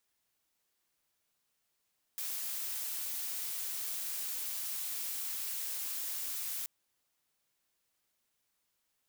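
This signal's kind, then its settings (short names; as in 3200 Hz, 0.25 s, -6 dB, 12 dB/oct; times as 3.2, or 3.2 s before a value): noise blue, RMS -38 dBFS 4.48 s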